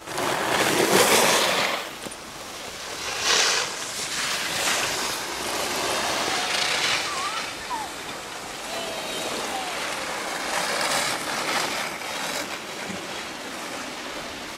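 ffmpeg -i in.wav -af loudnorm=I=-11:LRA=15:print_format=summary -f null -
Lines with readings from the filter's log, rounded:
Input Integrated:    -25.0 LUFS
Input True Peak:      -5.6 dBTP
Input LRA:             8.3 LU
Input Threshold:     -35.0 LUFS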